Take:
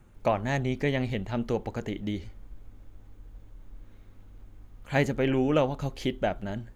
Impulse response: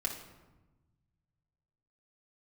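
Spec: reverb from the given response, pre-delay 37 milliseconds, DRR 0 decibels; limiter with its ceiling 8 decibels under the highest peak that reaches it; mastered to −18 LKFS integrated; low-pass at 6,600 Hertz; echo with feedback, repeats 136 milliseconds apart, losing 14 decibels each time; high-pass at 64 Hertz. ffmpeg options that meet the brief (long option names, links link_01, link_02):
-filter_complex "[0:a]highpass=64,lowpass=6600,alimiter=limit=-19dB:level=0:latency=1,aecho=1:1:136|272:0.2|0.0399,asplit=2[link_01][link_02];[1:a]atrim=start_sample=2205,adelay=37[link_03];[link_02][link_03]afir=irnorm=-1:irlink=0,volume=-3dB[link_04];[link_01][link_04]amix=inputs=2:normalize=0,volume=9.5dB"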